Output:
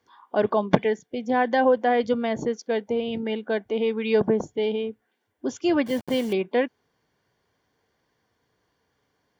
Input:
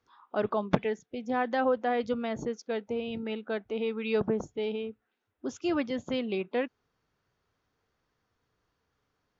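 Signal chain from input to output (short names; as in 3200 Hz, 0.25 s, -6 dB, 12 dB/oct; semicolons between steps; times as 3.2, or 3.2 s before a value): 5.86–6.33 level-crossing sampler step -42 dBFS; notch comb 1300 Hz; gain +7.5 dB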